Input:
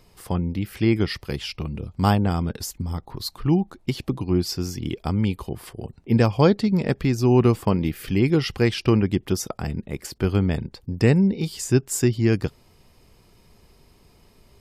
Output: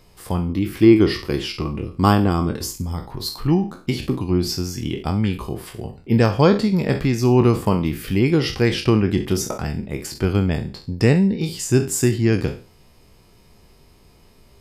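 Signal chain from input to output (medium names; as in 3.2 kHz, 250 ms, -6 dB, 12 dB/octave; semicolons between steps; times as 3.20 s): spectral sustain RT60 0.37 s; 0.49–2.76 s: small resonant body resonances 330/1100 Hz, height 9 dB, ringing for 25 ms; trim +1.5 dB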